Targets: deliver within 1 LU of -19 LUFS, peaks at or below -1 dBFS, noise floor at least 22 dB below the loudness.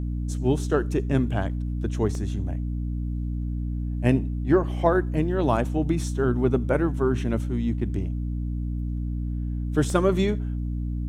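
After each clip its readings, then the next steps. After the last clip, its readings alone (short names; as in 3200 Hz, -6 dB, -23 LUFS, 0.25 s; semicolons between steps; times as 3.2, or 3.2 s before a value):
dropouts 2; longest dropout 1.4 ms; hum 60 Hz; harmonics up to 300 Hz; hum level -26 dBFS; loudness -26.0 LUFS; peak -6.5 dBFS; loudness target -19.0 LUFS
-> interpolate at 2.15/9.9, 1.4 ms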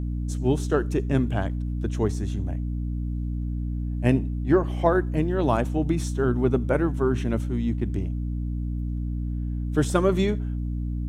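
dropouts 0; hum 60 Hz; harmonics up to 300 Hz; hum level -26 dBFS
-> de-hum 60 Hz, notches 5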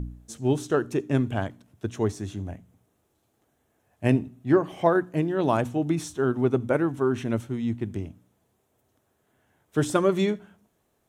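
hum none; loudness -26.0 LUFS; peak -7.0 dBFS; loudness target -19.0 LUFS
-> gain +7 dB; limiter -1 dBFS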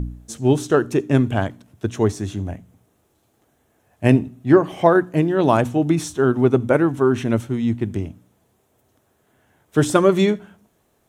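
loudness -19.0 LUFS; peak -1.0 dBFS; noise floor -65 dBFS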